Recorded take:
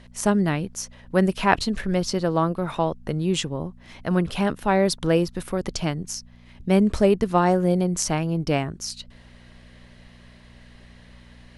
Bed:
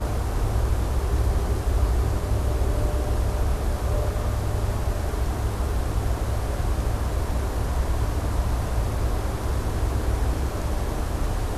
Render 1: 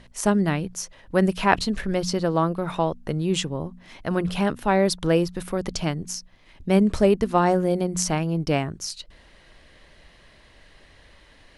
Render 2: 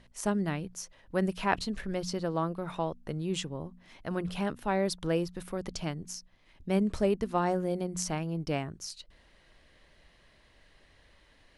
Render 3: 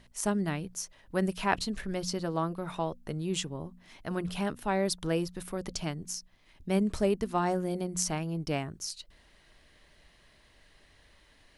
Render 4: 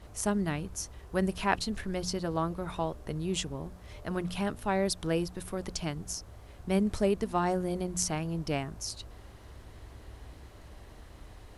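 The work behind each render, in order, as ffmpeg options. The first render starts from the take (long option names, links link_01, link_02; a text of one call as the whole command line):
ffmpeg -i in.wav -af "bandreject=frequency=60:width_type=h:width=4,bandreject=frequency=120:width_type=h:width=4,bandreject=frequency=180:width_type=h:width=4,bandreject=frequency=240:width_type=h:width=4" out.wav
ffmpeg -i in.wav -af "volume=-9dB" out.wav
ffmpeg -i in.wav -af "highshelf=frequency=6000:gain=7,bandreject=frequency=520:width=15" out.wav
ffmpeg -i in.wav -i bed.wav -filter_complex "[1:a]volume=-24dB[link_01];[0:a][link_01]amix=inputs=2:normalize=0" out.wav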